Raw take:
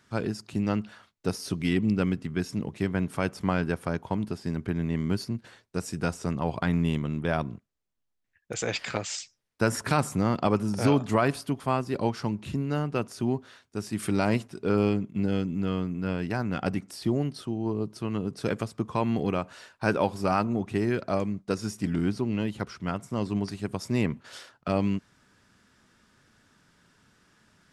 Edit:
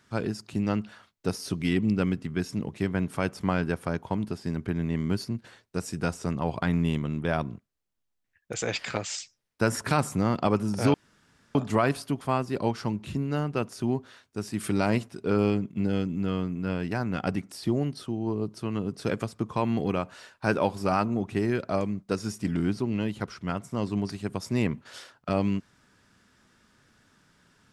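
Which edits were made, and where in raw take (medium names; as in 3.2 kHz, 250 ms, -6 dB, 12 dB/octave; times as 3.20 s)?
10.94 s: insert room tone 0.61 s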